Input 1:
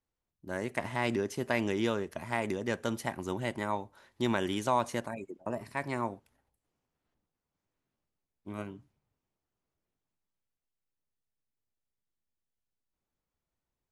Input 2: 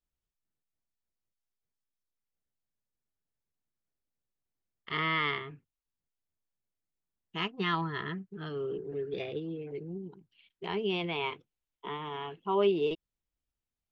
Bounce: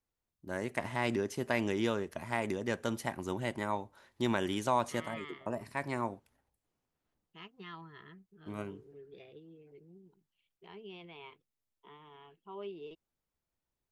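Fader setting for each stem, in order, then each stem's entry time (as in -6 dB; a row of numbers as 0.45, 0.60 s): -1.5, -17.0 dB; 0.00, 0.00 s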